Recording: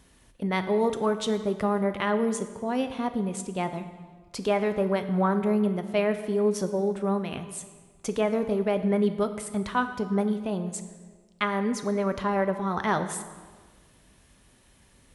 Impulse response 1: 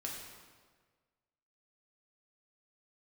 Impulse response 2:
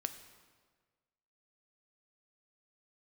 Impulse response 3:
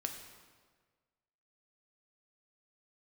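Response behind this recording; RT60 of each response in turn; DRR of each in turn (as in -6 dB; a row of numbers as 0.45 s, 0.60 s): 2; 1.5 s, 1.5 s, 1.5 s; -2.5 dB, 8.5 dB, 3.5 dB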